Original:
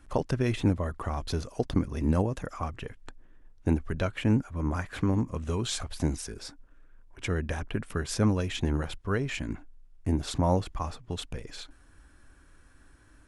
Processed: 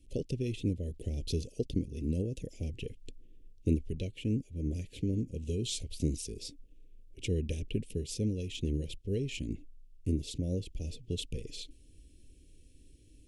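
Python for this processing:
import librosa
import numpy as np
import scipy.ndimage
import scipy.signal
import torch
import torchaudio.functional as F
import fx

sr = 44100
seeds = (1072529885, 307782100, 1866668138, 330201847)

y = fx.rider(x, sr, range_db=4, speed_s=0.5)
y = scipy.signal.sosfilt(scipy.signal.ellip(3, 1.0, 70, [470.0, 2700.0], 'bandstop', fs=sr, output='sos'), y)
y = y * 10.0 ** (-4.0 / 20.0)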